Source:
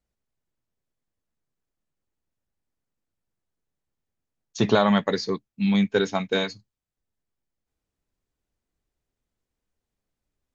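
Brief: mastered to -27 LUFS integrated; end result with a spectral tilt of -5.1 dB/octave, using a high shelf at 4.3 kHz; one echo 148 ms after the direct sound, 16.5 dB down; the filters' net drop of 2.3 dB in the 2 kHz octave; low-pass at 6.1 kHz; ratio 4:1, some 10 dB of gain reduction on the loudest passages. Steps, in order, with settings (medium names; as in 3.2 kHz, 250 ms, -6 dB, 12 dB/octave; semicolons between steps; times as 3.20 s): low-pass 6.1 kHz; peaking EQ 2 kHz -4.5 dB; treble shelf 4.3 kHz +6.5 dB; compression 4:1, threshold -28 dBFS; delay 148 ms -16.5 dB; trim +5.5 dB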